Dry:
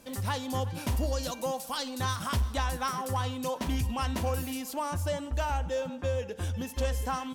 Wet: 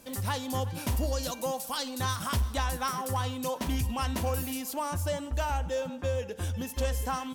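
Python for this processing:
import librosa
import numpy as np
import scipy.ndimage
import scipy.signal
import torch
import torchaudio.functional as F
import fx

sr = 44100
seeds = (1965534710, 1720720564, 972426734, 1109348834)

y = fx.high_shelf(x, sr, hz=9200.0, db=6.5)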